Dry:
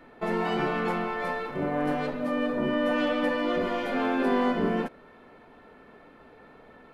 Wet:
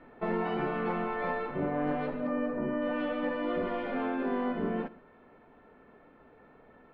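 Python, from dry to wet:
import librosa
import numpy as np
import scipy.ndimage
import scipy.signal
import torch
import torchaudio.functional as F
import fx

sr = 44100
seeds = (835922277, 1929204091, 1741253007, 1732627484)

y = fx.air_absorb(x, sr, metres=350.0)
y = y + 10.0 ** (-20.5 / 20.0) * np.pad(y, (int(117 * sr / 1000.0), 0))[:len(y)]
y = fx.rider(y, sr, range_db=10, speed_s=0.5)
y = fx.peak_eq(y, sr, hz=3500.0, db=-14.0, octaves=0.5, at=(2.27, 2.82))
y = y * librosa.db_to_amplitude(-3.5)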